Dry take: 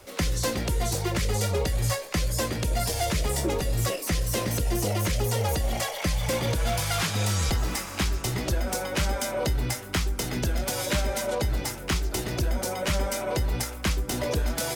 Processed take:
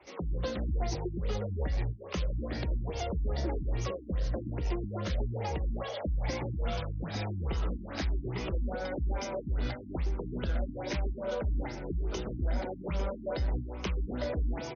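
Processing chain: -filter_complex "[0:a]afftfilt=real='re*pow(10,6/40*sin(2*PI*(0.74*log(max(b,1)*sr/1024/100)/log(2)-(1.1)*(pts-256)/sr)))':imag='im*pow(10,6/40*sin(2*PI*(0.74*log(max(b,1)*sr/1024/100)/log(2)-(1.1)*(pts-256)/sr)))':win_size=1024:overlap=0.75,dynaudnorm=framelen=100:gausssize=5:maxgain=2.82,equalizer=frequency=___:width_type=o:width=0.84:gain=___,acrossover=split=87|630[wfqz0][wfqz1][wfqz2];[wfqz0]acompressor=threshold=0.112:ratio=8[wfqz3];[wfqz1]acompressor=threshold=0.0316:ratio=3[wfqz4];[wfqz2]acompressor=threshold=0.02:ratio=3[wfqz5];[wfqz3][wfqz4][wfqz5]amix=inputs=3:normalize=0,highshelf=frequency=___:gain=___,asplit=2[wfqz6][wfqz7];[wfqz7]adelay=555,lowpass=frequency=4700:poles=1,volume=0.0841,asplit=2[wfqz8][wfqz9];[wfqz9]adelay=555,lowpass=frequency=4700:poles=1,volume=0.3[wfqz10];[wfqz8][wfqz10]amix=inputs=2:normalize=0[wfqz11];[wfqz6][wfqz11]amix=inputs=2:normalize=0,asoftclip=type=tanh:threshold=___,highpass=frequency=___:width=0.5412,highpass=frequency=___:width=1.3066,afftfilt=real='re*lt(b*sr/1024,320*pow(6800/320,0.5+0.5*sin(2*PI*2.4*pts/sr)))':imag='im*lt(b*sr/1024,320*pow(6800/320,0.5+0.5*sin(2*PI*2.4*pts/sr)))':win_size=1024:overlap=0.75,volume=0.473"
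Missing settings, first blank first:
100, -8.5, 10000, 4.5, 0.188, 42, 42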